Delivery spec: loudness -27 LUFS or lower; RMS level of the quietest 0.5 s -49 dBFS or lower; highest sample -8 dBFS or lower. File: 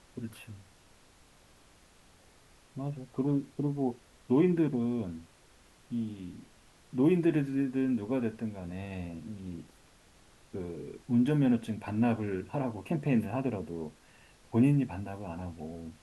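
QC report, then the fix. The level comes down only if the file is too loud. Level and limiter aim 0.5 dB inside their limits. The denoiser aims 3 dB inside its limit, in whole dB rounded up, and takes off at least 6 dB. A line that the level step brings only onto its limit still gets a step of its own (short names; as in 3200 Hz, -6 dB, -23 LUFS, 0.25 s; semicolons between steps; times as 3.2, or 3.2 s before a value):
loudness -31.5 LUFS: OK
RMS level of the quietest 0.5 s -60 dBFS: OK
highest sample -15.0 dBFS: OK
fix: none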